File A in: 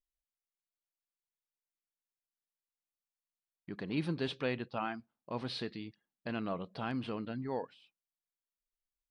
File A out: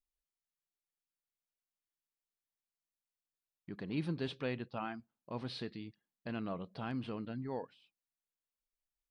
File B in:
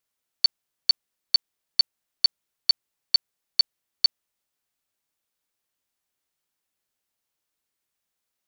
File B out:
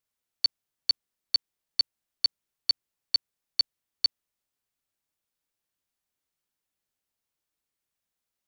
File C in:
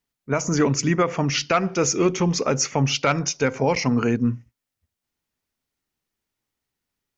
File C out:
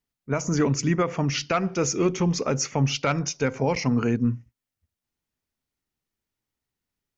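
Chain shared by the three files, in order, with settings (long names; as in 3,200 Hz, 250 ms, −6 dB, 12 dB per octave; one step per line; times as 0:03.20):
low-shelf EQ 240 Hz +5 dB
level −4.5 dB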